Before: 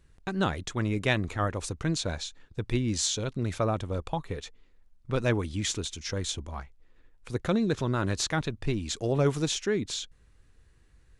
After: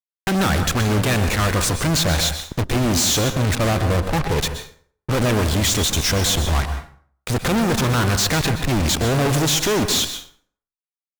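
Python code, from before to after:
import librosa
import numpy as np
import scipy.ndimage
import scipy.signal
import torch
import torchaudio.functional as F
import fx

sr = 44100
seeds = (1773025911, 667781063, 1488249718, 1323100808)

y = fx.lowpass(x, sr, hz=1500.0, slope=12, at=(3.55, 4.38))
y = fx.fuzz(y, sr, gain_db=52.0, gate_db=-44.0)
y = fx.tube_stage(y, sr, drive_db=19.0, bias=0.6)
y = fx.rev_plate(y, sr, seeds[0], rt60_s=0.52, hf_ratio=0.7, predelay_ms=110, drr_db=8.0)
y = y * librosa.db_to_amplitude(2.0)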